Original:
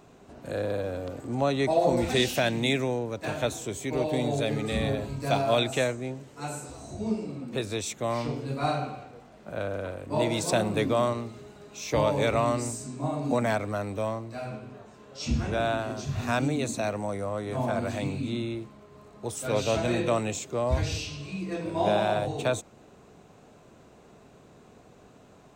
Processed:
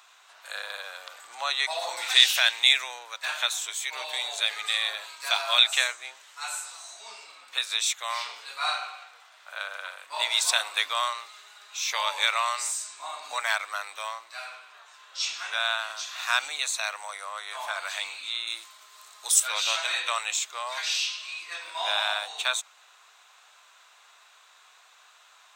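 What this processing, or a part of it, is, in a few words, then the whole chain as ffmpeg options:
headphones lying on a table: -filter_complex "[0:a]asettb=1/sr,asplit=3[link_01][link_02][link_03];[link_01]atrim=end=18.474[link_04];[link_02]atrim=start=18.47:end=19.4,asetpts=PTS-STARTPTS,afade=type=in:duration=0.004:curve=qsin,afade=type=out:start_time=0.926:duration=0.004:curve=qsin,bass=frequency=250:gain=13,treble=frequency=4000:gain=12[link_05];[link_03]atrim=start=19.396[link_06];[link_04][link_05]acrossfade=duration=0.004:curve1=hsin:curve2=qsin[link_07];[link_07][link_06]acrossfade=duration=0.004:curve1=qsin:curve2=hsin,highpass=frequency=1100:width=0.5412,highpass=frequency=1100:width=1.3066,equalizer=frequency=3600:width_type=o:width=0.38:gain=6,volume=7dB"

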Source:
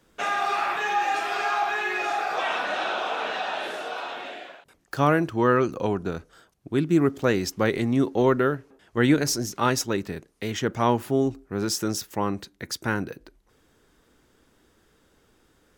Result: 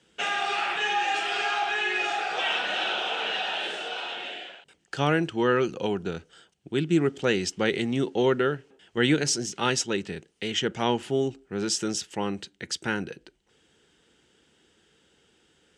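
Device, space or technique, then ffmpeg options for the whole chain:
car door speaker: -af "highpass=93,equalizer=frequency=110:width_type=q:width=4:gain=-8,equalizer=frequency=270:width_type=q:width=4:gain=-6,equalizer=frequency=620:width_type=q:width=4:gain=-6,equalizer=frequency=1100:width_type=q:width=4:gain=-10,equalizer=frequency=3000:width_type=q:width=4:gain=10,equalizer=frequency=8200:width_type=q:width=4:gain=5,lowpass=frequency=8400:width=0.5412,lowpass=frequency=8400:width=1.3066"

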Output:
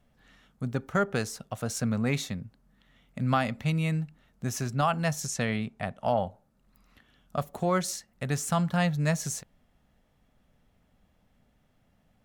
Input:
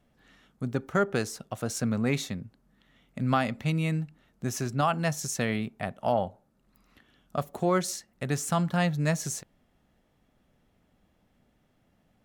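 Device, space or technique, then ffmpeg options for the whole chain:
low shelf boost with a cut just above: -filter_complex "[0:a]asettb=1/sr,asplit=3[link_01][link_02][link_03];[link_01]atrim=end=5.264[link_04];[link_02]atrim=start=5.26:end=6.13,asetpts=PTS-STARTPTS,afade=type=in:duration=0.004:curve=qsin,afade=type=out:start_time=0.866:duration=0.004:curve=qsin,lowpass=9900[link_05];[link_03]atrim=start=6.126[link_06];[link_04][link_05]acrossfade=duration=0.004:curve1=hsin:curve2=qsin[link_07];[link_07][link_06]acrossfade=duration=0.004:curve1=qsin:curve2=hsin,lowshelf=frequency=61:gain=6,equalizer=frequency=340:width_type=o:width=0.57:gain=-5.5"

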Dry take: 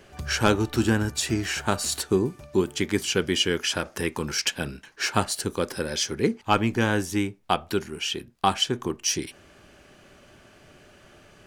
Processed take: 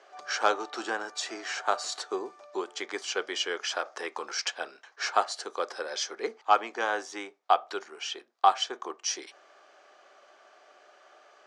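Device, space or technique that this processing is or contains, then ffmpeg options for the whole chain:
phone speaker on a table: -af "highpass=frequency=440:width=0.5412,highpass=frequency=440:width=1.3066,equalizer=frequency=730:width_type=q:width=4:gain=8,equalizer=frequency=1200:width_type=q:width=4:gain=7,equalizer=frequency=2700:width_type=q:width=4:gain=-5,lowpass=frequency=6700:width=0.5412,lowpass=frequency=6700:width=1.3066,volume=-4.5dB"

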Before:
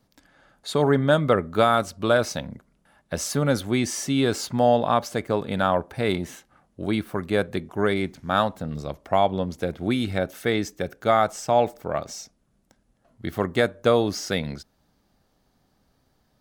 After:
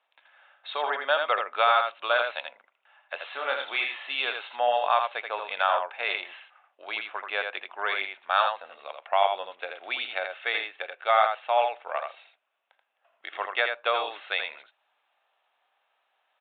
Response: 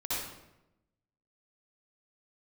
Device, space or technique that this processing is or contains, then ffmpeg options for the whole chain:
musical greeting card: -filter_complex "[0:a]aresample=8000,aresample=44100,highpass=frequency=710:width=0.5412,highpass=frequency=710:width=1.3066,equalizer=frequency=2600:width_type=o:width=0.28:gain=8.5,asettb=1/sr,asplit=3[link_01][link_02][link_03];[link_01]atrim=end=3.204[link_04];[link_02]atrim=start=3.2:end=4.15,asetpts=PTS-STARTPTS,afade=type=in:duration=0.004:curve=qsin,afade=type=out:start_time=0.946:duration=0.004:curve=qsin,asplit=2[link_05][link_06];[link_06]adelay=30,volume=-5dB[link_07];[link_05][link_07]amix=inputs=2:normalize=0,atrim=end_sample=41895[link_08];[link_03]atrim=start=4.146[link_09];[link_04][link_08]acrossfade=duration=0.004:curve1=hsin:curve2=qsin[link_10];[link_10][link_09]acrossfade=duration=0.004:curve1=qsin:curve2=hsin,aecho=1:1:82:0.531"

